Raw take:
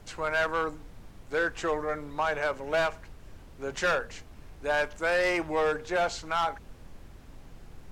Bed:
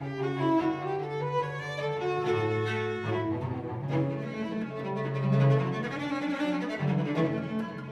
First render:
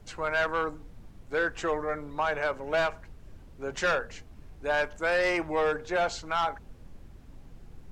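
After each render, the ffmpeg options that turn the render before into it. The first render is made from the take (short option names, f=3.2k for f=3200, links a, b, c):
-af "afftdn=nr=6:nf=-50"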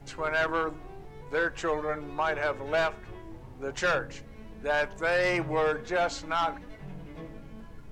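-filter_complex "[1:a]volume=-16dB[a];[0:a][a]amix=inputs=2:normalize=0"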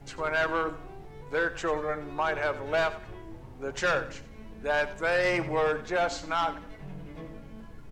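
-af "aecho=1:1:91|182|273:0.168|0.052|0.0161"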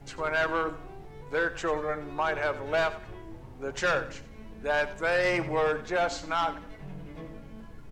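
-af anull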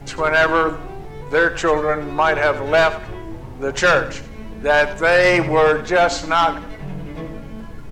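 -af "volume=12dB"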